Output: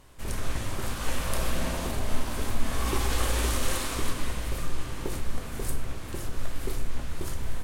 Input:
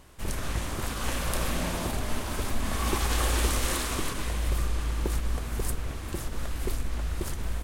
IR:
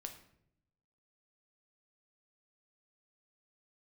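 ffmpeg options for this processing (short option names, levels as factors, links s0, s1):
-filter_complex "[1:a]atrim=start_sample=2205,atrim=end_sample=6174,asetrate=37926,aresample=44100[s0];[0:a][s0]afir=irnorm=-1:irlink=0,volume=1.26"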